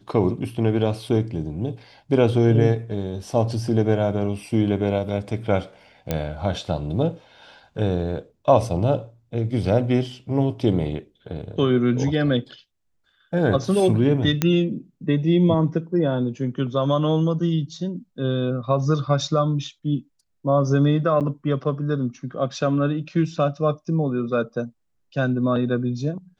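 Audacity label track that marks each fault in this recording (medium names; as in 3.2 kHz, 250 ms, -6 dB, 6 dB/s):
6.110000	6.110000	pop -9 dBFS
14.420000	14.420000	pop -5 dBFS
21.200000	21.210000	dropout 7.8 ms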